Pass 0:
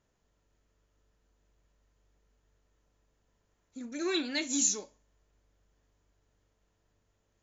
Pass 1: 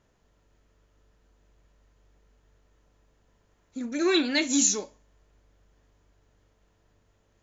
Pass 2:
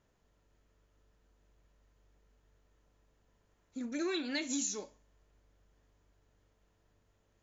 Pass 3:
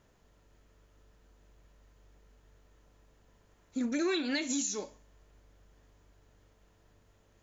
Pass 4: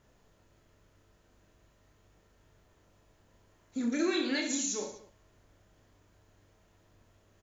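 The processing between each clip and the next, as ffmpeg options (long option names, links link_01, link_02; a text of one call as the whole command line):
ffmpeg -i in.wav -af "highshelf=frequency=6600:gain=-8,volume=8.5dB" out.wav
ffmpeg -i in.wav -af "acompressor=threshold=-26dB:ratio=6,volume=-6dB" out.wav
ffmpeg -i in.wav -af "alimiter=level_in=5.5dB:limit=-24dB:level=0:latency=1:release=268,volume=-5.5dB,volume=7.5dB" out.wav
ffmpeg -i in.wav -af "aecho=1:1:30|67.5|114.4|173|246.2:0.631|0.398|0.251|0.158|0.1,volume=-1dB" out.wav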